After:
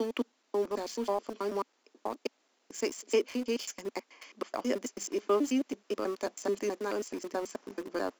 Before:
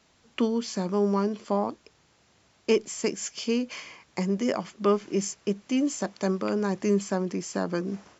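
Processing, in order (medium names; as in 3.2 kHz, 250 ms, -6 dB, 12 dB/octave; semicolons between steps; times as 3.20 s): slices played last to first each 108 ms, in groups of 5; elliptic high-pass 250 Hz, stop band 50 dB; in parallel at -3 dB: small samples zeroed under -32.5 dBFS; on the sum: trim -8 dB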